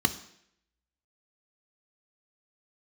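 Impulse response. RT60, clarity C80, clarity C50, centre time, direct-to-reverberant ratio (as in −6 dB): 0.70 s, 17.0 dB, 14.0 dB, 8 ms, 9.5 dB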